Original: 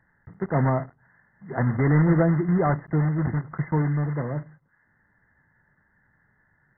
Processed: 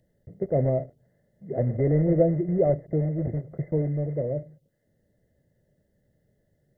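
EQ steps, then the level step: dynamic EQ 220 Hz, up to -6 dB, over -35 dBFS, Q 1; EQ curve 280 Hz 0 dB, 590 Hz +9 dB, 950 Hz -26 dB, 1600 Hz -26 dB, 2900 Hz +9 dB; 0.0 dB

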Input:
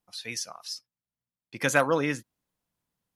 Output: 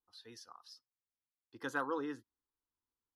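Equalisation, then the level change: air absorption 390 m; pre-emphasis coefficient 0.8; fixed phaser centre 620 Hz, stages 6; +5.0 dB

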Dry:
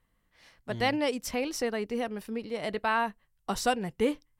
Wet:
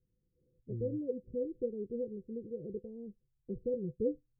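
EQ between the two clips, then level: rippled Chebyshev low-pass 520 Hz, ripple 9 dB; +1.0 dB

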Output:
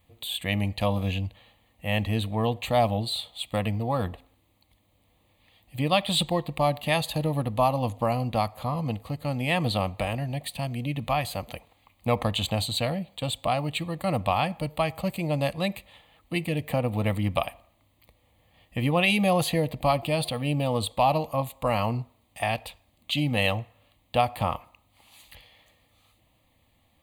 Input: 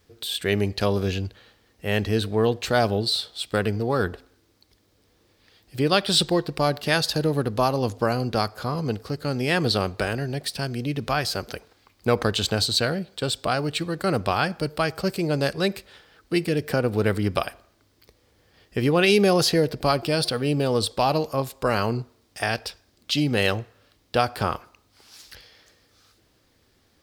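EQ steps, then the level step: bell 420 Hz +5.5 dB 1.1 oct; fixed phaser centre 1500 Hz, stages 6; 0.0 dB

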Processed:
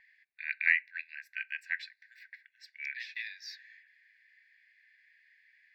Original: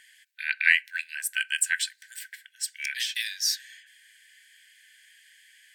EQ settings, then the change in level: air absorption 410 m; fixed phaser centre 2100 Hz, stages 8; 0.0 dB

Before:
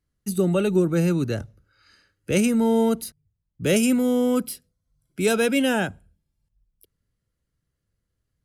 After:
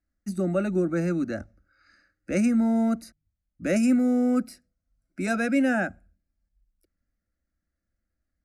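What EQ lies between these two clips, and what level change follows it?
LPF 5300 Hz 12 dB/oct; fixed phaser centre 650 Hz, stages 8; 0.0 dB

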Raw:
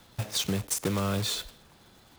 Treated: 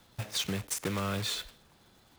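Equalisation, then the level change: dynamic EQ 2000 Hz, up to +6 dB, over -47 dBFS, Q 0.85; -5.0 dB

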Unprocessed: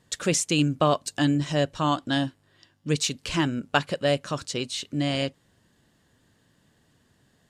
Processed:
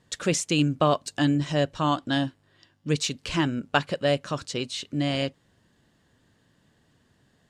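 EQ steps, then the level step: high shelf 9300 Hz -9.5 dB; 0.0 dB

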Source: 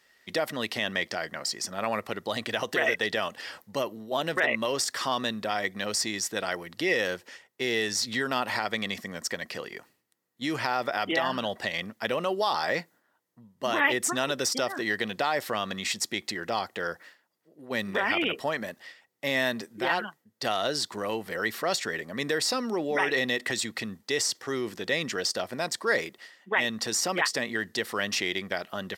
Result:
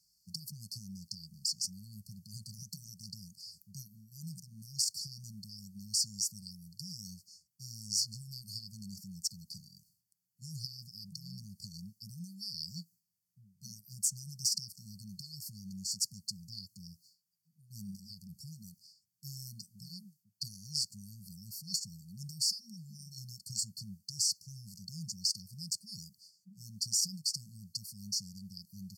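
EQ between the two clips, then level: brick-wall FIR band-stop 200–4300 Hz; -2.0 dB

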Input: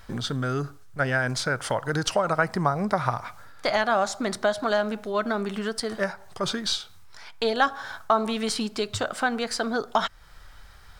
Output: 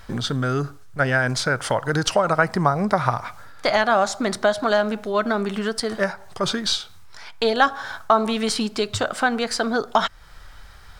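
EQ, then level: high shelf 11000 Hz -3 dB; +4.5 dB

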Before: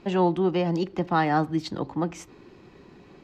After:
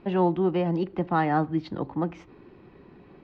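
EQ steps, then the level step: air absorption 310 m; 0.0 dB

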